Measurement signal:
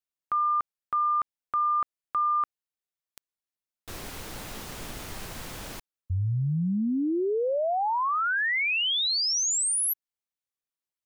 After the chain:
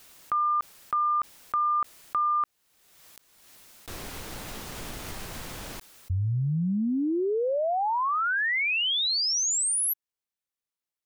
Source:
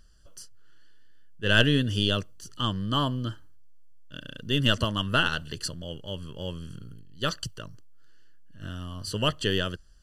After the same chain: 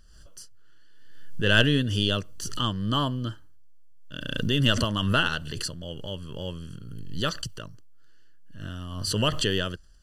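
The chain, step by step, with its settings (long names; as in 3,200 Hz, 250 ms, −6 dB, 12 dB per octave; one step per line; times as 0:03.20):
background raised ahead of every attack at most 40 dB per second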